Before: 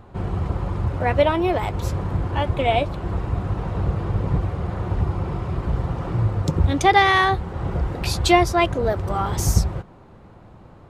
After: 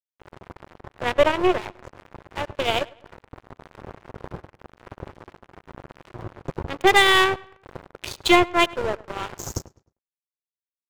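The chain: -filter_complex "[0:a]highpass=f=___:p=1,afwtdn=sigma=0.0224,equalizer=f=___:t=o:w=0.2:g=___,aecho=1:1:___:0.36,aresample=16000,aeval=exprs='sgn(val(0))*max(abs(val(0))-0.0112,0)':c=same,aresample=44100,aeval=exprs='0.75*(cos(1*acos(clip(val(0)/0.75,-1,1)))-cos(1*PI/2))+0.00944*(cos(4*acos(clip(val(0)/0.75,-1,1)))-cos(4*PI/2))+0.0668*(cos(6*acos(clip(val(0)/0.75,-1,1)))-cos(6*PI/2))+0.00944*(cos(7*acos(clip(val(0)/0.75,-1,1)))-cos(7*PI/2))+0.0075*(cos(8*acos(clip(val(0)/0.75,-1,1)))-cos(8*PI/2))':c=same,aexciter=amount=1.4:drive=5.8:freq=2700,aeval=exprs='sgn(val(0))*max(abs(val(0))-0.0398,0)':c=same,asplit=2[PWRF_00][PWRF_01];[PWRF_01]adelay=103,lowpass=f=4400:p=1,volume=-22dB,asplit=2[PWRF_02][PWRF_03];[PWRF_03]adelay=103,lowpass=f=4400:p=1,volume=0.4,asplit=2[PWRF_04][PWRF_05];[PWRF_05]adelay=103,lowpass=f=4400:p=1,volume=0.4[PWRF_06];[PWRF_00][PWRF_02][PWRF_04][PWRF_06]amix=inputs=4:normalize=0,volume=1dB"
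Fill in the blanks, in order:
280, 370, 7.5, 2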